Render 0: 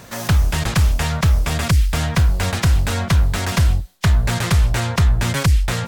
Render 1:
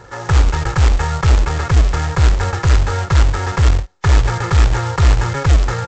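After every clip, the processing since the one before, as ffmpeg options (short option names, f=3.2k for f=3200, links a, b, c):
-af "highshelf=f=2.1k:t=q:w=1.5:g=-11,aecho=1:1:2.3:0.88,aresample=16000,acrusher=bits=3:mode=log:mix=0:aa=0.000001,aresample=44100,volume=-1dB"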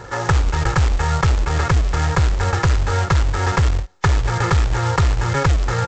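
-af "acompressor=threshold=-18dB:ratio=6,volume=4.5dB"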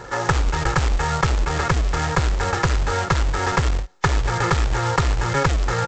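-af "equalizer=f=86:t=o:w=0.84:g=-9"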